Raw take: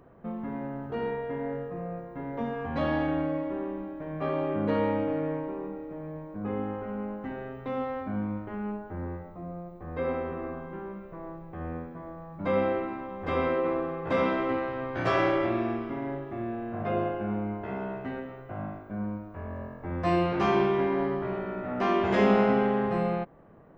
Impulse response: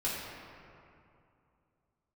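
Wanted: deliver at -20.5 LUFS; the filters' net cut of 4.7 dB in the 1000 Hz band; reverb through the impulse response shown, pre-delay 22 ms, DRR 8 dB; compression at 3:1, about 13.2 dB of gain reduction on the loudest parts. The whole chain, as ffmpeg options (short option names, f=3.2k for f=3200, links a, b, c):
-filter_complex "[0:a]equalizer=f=1k:t=o:g=-6.5,acompressor=threshold=-37dB:ratio=3,asplit=2[a][b];[1:a]atrim=start_sample=2205,adelay=22[c];[b][c]afir=irnorm=-1:irlink=0,volume=-14dB[d];[a][d]amix=inputs=2:normalize=0,volume=19dB"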